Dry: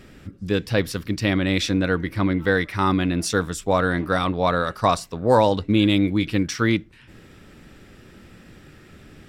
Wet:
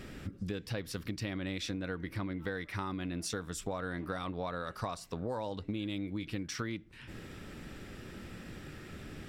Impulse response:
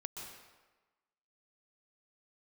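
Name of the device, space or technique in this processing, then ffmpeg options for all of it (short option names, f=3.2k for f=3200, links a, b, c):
serial compression, peaks first: -af "acompressor=threshold=-30dB:ratio=4,acompressor=threshold=-38dB:ratio=2"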